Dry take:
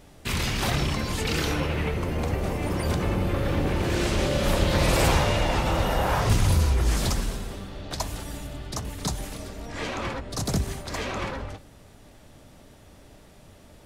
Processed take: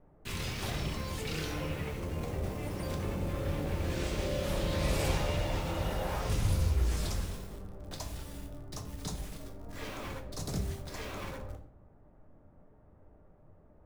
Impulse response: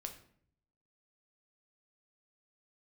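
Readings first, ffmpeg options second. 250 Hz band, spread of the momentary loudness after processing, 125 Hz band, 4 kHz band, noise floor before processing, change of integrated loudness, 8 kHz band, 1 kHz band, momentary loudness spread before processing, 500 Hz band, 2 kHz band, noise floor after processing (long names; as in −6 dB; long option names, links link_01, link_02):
−9.5 dB, 13 LU, −8.5 dB, −10.5 dB, −51 dBFS, −9.0 dB, −10.0 dB, −12.0 dB, 14 LU, −9.0 dB, −11.0 dB, −60 dBFS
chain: -filter_complex "[0:a]acrossover=split=830|1500[link_01][link_02][link_03];[link_02]asoftclip=type=tanh:threshold=-39dB[link_04];[link_03]acrusher=bits=6:mix=0:aa=0.000001[link_05];[link_01][link_04][link_05]amix=inputs=3:normalize=0[link_06];[1:a]atrim=start_sample=2205[link_07];[link_06][link_07]afir=irnorm=-1:irlink=0,volume=-7dB"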